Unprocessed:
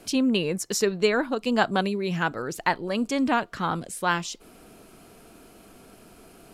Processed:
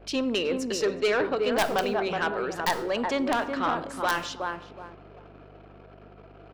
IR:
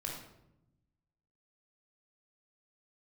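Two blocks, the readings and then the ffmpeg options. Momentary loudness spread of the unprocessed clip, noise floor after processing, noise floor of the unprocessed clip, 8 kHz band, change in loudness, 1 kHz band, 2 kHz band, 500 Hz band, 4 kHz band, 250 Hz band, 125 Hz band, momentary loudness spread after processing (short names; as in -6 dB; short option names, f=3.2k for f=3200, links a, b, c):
6 LU, -50 dBFS, -52 dBFS, -5.5 dB, -1.5 dB, -0.5 dB, -1.0 dB, +0.5 dB, -0.5 dB, -5.0 dB, -8.5 dB, 9 LU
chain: -filter_complex "[0:a]acrossover=split=280 4900:gain=0.0891 1 0.141[a][b][c];[a][b][c]amix=inputs=3:normalize=0,asplit=2[d][e];[e]adelay=371,lowpass=f=850:p=1,volume=-4.5dB,asplit=2[f][g];[g]adelay=371,lowpass=f=850:p=1,volume=0.31,asplit=2[h][i];[i]adelay=371,lowpass=f=850:p=1,volume=0.31,asplit=2[j][k];[k]adelay=371,lowpass=f=850:p=1,volume=0.31[l];[d][f][h][j][l]amix=inputs=5:normalize=0,aeval=exprs='val(0)+0.002*(sin(2*PI*50*n/s)+sin(2*PI*2*50*n/s)/2+sin(2*PI*3*50*n/s)/3+sin(2*PI*4*50*n/s)/4+sin(2*PI*5*50*n/s)/5)':c=same,aeval=exprs='(mod(3.16*val(0)+1,2)-1)/3.16':c=same,asplit=2[m][n];[1:a]atrim=start_sample=2205[o];[n][o]afir=irnorm=-1:irlink=0,volume=-12dB[p];[m][p]amix=inputs=2:normalize=0,asoftclip=type=tanh:threshold=-19.5dB,anlmdn=0.00398,volume=1.5dB"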